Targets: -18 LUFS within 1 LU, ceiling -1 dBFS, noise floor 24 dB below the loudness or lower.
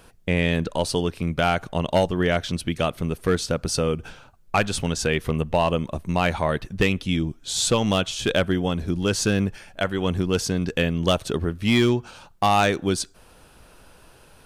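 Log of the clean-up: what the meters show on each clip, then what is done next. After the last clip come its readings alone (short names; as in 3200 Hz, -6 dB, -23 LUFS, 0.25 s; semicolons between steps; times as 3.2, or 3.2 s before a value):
clipped 0.4%; flat tops at -11.5 dBFS; loudness -23.5 LUFS; peak -11.5 dBFS; loudness target -18.0 LUFS
-> clip repair -11.5 dBFS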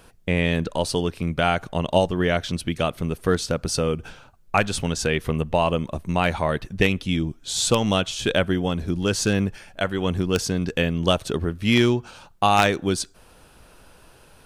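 clipped 0.0%; loudness -23.0 LUFS; peak -2.5 dBFS; loudness target -18.0 LUFS
-> gain +5 dB; limiter -1 dBFS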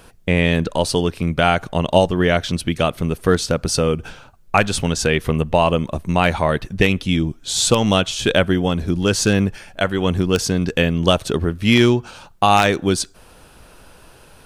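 loudness -18.5 LUFS; peak -1.0 dBFS; noise floor -47 dBFS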